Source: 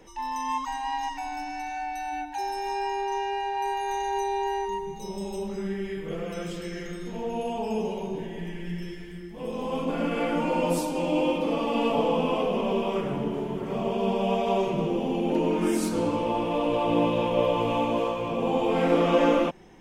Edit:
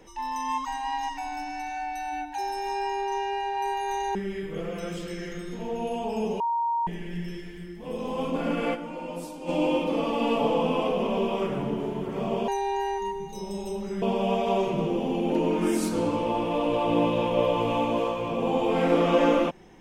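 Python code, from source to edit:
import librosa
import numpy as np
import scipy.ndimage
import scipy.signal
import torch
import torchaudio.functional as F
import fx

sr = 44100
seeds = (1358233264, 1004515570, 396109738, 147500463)

y = fx.edit(x, sr, fx.move(start_s=4.15, length_s=1.54, to_s=14.02),
    fx.bleep(start_s=7.94, length_s=0.47, hz=934.0, db=-23.0),
    fx.fade_down_up(start_s=10.28, length_s=0.75, db=-10.5, fade_s=0.13, curve='exp'), tone=tone)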